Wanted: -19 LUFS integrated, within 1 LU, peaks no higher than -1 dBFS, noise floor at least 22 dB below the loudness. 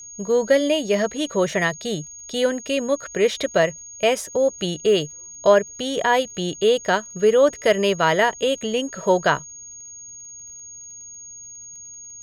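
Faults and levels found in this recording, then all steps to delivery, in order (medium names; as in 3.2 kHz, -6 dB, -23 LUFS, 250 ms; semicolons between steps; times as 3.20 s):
tick rate 45 per s; steady tone 6.6 kHz; tone level -37 dBFS; loudness -21.0 LUFS; peak level -3.5 dBFS; loudness target -19.0 LUFS
-> de-click; band-stop 6.6 kHz, Q 30; trim +2 dB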